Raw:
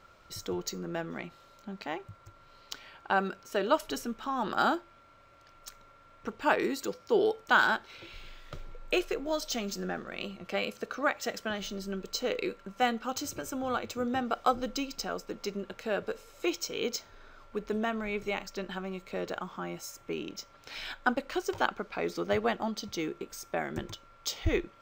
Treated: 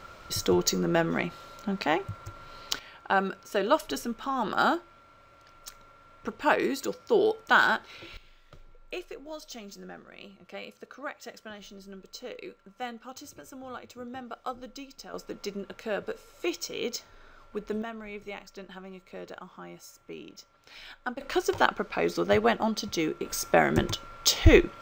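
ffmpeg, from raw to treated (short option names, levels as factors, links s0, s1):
-af "asetnsamples=n=441:p=0,asendcmd='2.79 volume volume 2.5dB;8.17 volume volume -9dB;15.14 volume volume 0dB;17.82 volume volume -6.5dB;21.21 volume volume 5.5dB;23.25 volume volume 11.5dB',volume=3.35"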